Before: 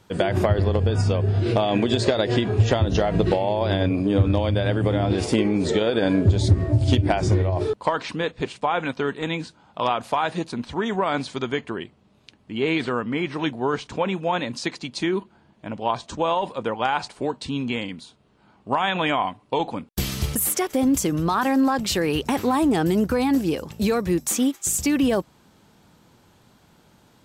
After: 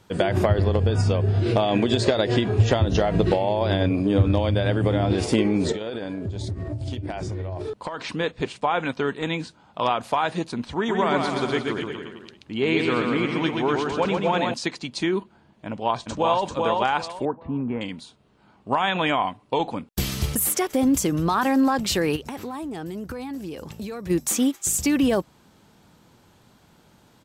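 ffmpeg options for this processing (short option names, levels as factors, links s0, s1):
-filter_complex "[0:a]asettb=1/sr,asplit=3[s0][s1][s2];[s0]atrim=end=5.724[s3];[s1]atrim=start=5.72:end=8.11,asetpts=PTS-STARTPTS,afade=t=in:d=0.004:c=qsin,afade=t=out:st=2.386:d=0.004:c=qsin,acompressor=threshold=0.0501:ratio=10:attack=3.2:release=140:knee=1:detection=peak[s4];[s2]atrim=start=8.106[s5];[s3][s4]acrossfade=d=0.004:c1=hsin:c2=qsin[s6];[s6][s5]acrossfade=d=0.004:c1=qsin:c2=hsin,asettb=1/sr,asplit=3[s7][s8][s9];[s7]atrim=end=10.754[s10];[s8]atrim=start=10.75:end=14.54,asetpts=PTS-STARTPTS,afade=t=in:d=0.004:c=qsin,afade=t=out:st=3.786:d=0.004:c=qsin,aecho=1:1:130|247|352.3|447.1|532.4:0.631|0.398|0.251|0.158|0.1,atrim=end_sample=167139[s11];[s9]atrim=start=14.536[s12];[s10][s11]acrossfade=d=0.004:c1=hsin:c2=qsin[s13];[s13][s12]acrossfade=d=0.004:c1=qsin:c2=hsin,asplit=2[s14][s15];[s15]afade=t=in:st=15.67:d=0.01,afade=t=out:st=16.44:d=0.01,aecho=0:1:390|780|1170|1560:0.749894|0.187474|0.0468684|0.0117171[s16];[s14][s16]amix=inputs=2:normalize=0,asettb=1/sr,asplit=3[s17][s18][s19];[s17]atrim=end=17.254[s20];[s18]atrim=start=17.25:end=17.81,asetpts=PTS-STARTPTS,afade=t=in:d=0.004:c=qsin,afade=t=out:st=0.556:d=0.004:c=qsin,lowpass=f=1500:w=0.5412,lowpass=f=1500:w=1.3066[s21];[s19]atrim=start=17.806[s22];[s20][s21]acrossfade=d=0.004:c1=hsin:c2=qsin[s23];[s23][s22]acrossfade=d=0.004:c1=qsin:c2=hsin,asplit=3[s24][s25][s26];[s24]afade=t=out:st=22.15:d=0.02[s27];[s25]acompressor=threshold=0.0282:ratio=5:attack=3.2:release=140:knee=1:detection=peak,afade=t=in:st=22.15:d=0.02,afade=t=out:st=24.09:d=0.02[s28];[s26]afade=t=in:st=24.09:d=0.02[s29];[s27][s28][s29]amix=inputs=3:normalize=0"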